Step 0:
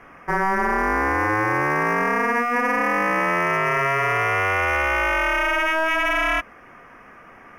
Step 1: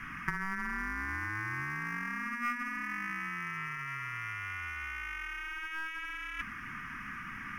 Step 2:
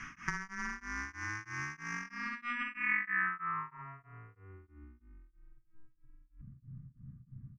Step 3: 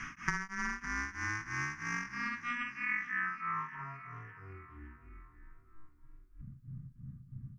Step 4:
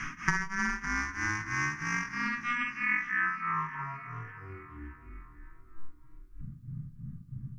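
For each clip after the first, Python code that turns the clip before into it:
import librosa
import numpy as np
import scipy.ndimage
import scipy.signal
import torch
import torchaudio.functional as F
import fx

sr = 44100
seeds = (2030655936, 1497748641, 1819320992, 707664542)

y1 = scipy.signal.sosfilt(scipy.signal.cheby1(2, 1.0, [210.0, 1500.0], 'bandstop', fs=sr, output='sos'), x)
y1 = fx.over_compress(y1, sr, threshold_db=-31.0, ratio=-0.5)
y1 = y1 * 10.0 ** (-3.5 / 20.0)
y2 = fx.filter_sweep_lowpass(y1, sr, from_hz=6100.0, to_hz=130.0, start_s=1.99, end_s=5.57, q=5.9)
y2 = y2 * np.abs(np.cos(np.pi * 3.1 * np.arange(len(y2)) / sr))
y2 = y2 * 10.0 ** (-2.0 / 20.0)
y3 = fx.rider(y2, sr, range_db=3, speed_s=0.5)
y3 = fx.echo_feedback(y3, sr, ms=560, feedback_pct=48, wet_db=-15)
y4 = fx.room_shoebox(y3, sr, seeds[0], volume_m3=230.0, walls='furnished', distance_m=0.54)
y4 = y4 * 10.0 ** (5.0 / 20.0)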